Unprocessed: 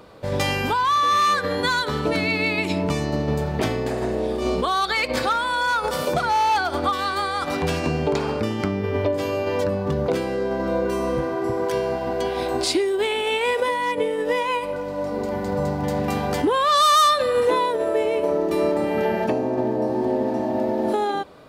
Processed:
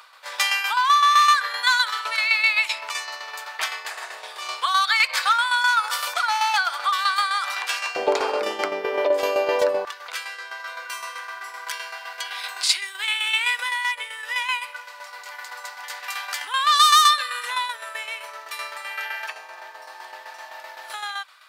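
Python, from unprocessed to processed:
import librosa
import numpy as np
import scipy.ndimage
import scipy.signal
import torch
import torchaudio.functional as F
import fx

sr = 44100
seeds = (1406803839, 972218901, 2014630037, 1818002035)

y = fx.highpass(x, sr, hz=fx.steps((0.0, 1100.0), (7.96, 470.0), (9.85, 1300.0)), slope=24)
y = fx.tremolo_shape(y, sr, shape='saw_down', hz=7.8, depth_pct=60)
y = y * librosa.db_to_amplitude(7.5)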